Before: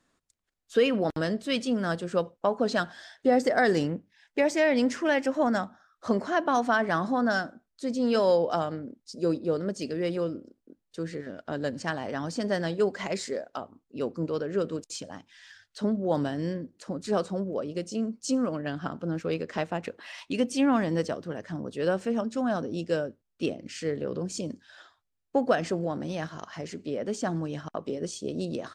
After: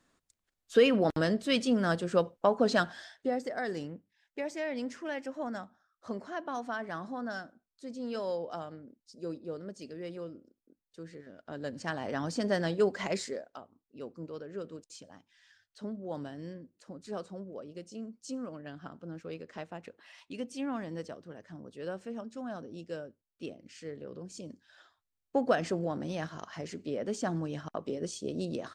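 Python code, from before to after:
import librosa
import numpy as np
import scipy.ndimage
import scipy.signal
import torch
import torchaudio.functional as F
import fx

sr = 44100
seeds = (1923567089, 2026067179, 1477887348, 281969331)

y = fx.gain(x, sr, db=fx.line((2.98, 0.0), (3.41, -12.0), (11.29, -12.0), (12.13, -1.5), (13.16, -1.5), (13.63, -12.0), (24.25, -12.0), (25.48, -3.0)))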